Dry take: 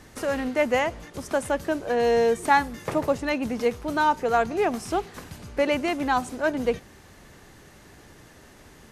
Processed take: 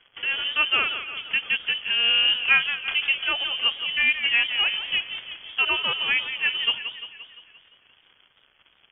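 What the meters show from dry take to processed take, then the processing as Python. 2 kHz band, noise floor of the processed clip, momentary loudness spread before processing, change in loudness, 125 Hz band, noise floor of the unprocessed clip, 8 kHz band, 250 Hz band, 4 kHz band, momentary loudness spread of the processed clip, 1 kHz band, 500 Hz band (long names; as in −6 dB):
+8.0 dB, −62 dBFS, 8 LU, +3.0 dB, below −10 dB, −51 dBFS, below −40 dB, −20.5 dB, +18.5 dB, 10 LU, −10.5 dB, −20.5 dB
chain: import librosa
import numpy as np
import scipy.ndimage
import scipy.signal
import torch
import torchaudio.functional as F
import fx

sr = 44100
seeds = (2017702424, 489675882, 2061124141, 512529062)

y = np.sign(x) * np.maximum(np.abs(x) - 10.0 ** (-48.0 / 20.0), 0.0)
y = fx.freq_invert(y, sr, carrier_hz=3300)
y = fx.echo_warbled(y, sr, ms=173, feedback_pct=56, rate_hz=2.8, cents=121, wet_db=-10)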